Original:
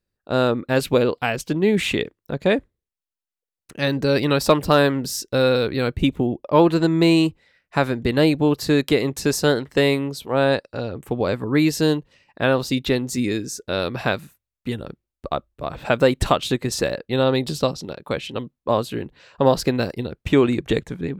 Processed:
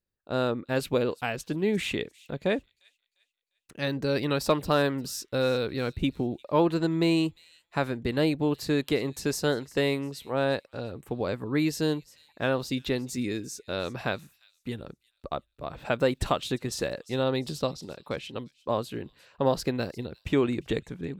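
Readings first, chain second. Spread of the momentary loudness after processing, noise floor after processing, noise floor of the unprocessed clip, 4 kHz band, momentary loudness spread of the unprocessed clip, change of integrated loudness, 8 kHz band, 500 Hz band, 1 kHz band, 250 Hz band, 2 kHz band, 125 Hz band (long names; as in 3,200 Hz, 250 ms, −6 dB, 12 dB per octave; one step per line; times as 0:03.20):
12 LU, −79 dBFS, below −85 dBFS, −8.0 dB, 12 LU, −8.0 dB, −8.0 dB, −8.0 dB, −8.0 dB, −8.0 dB, −8.0 dB, −8.0 dB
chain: delay with a high-pass on its return 350 ms, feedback 35%, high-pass 4,000 Hz, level −17 dB
level −8 dB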